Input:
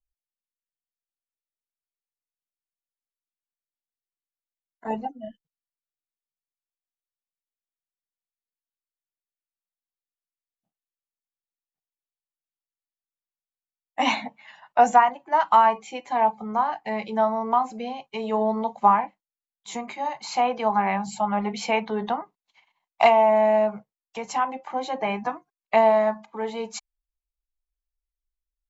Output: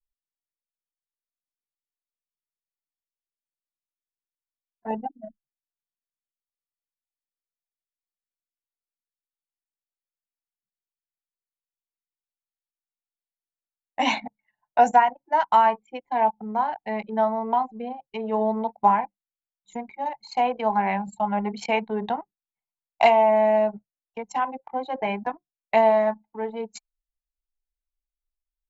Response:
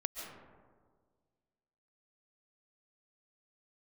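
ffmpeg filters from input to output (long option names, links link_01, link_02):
-af "anlmdn=25.1,bandreject=frequency=1200:width=5.1"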